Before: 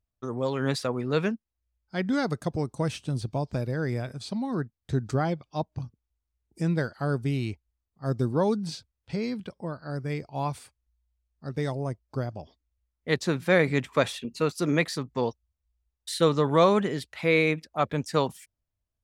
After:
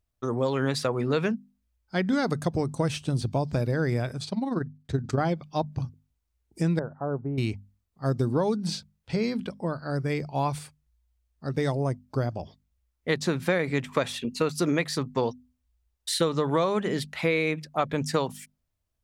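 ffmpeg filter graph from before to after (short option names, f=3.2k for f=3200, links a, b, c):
-filter_complex "[0:a]asettb=1/sr,asplit=3[a][b][c];[a]atrim=end=4.244[d];[b]atrim=start=4.24:end=5.18,asetpts=PTS-STARTPTS,afade=t=in:d=0.004:c=qsin,afade=t=out:st=0.936:d=0.004:c=qsin,highshelf=f=8.3k:g=-7,tremolo=f=21:d=0.71[e];[c]atrim=start=5.176[f];[d][e]acrossfade=d=0.004:c1=hsin:c2=qsin[g];[g][f]acrossfade=d=0.004:c1=qsin:c2=hsin,asettb=1/sr,asplit=3[h][i][j];[h]atrim=end=6.794[k];[i]atrim=start=6.79:end=7.38,asetpts=PTS-STARTPTS,afade=t=in:d=0.004:c=qsin,afade=t=out:st=0.586:d=0.004:c=qsin,lowpass=f=1k:w=0.5412,lowpass=f=1k:w=1.3066,lowshelf=f=450:g=-10[l];[j]atrim=start=7.376[m];[k][l]acrossfade=d=0.004:c1=hsin:c2=qsin[n];[n][m]acrossfade=d=0.004:c1=qsin:c2=hsin,bandreject=f=50:t=h:w=6,bandreject=f=100:t=h:w=6,bandreject=f=150:t=h:w=6,bandreject=f=200:t=h:w=6,bandreject=f=250:t=h:w=6,acompressor=threshold=-26dB:ratio=6,volume=5dB"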